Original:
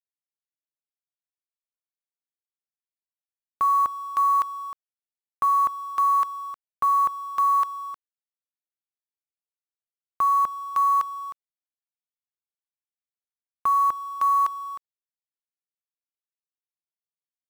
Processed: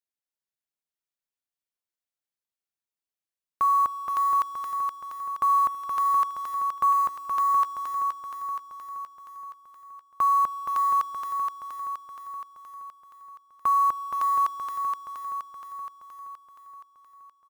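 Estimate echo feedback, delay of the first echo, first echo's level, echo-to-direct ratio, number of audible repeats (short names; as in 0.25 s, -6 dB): 59%, 0.472 s, -5.0 dB, -3.0 dB, 7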